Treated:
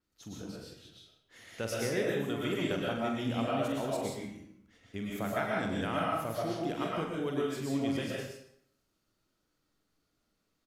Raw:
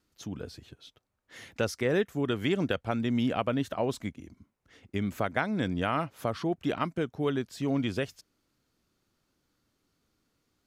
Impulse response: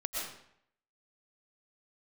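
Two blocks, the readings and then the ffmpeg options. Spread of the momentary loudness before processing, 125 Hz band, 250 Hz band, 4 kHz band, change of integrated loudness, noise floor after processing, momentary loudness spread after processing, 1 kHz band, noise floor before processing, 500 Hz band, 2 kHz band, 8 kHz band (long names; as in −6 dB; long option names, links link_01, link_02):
12 LU, −4.5 dB, −3.5 dB, −1.5 dB, −3.0 dB, −79 dBFS, 14 LU, −1.5 dB, −79 dBFS, −2.5 dB, −3.0 dB, +2.0 dB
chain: -filter_complex "[0:a]aecho=1:1:44|158:0.422|0.158[link_01];[1:a]atrim=start_sample=2205[link_02];[link_01][link_02]afir=irnorm=-1:irlink=0,adynamicequalizer=threshold=0.00251:dfrequency=5700:dqfactor=0.7:tfrequency=5700:tqfactor=0.7:attack=5:release=100:ratio=0.375:range=4:mode=boostabove:tftype=highshelf,volume=-7dB"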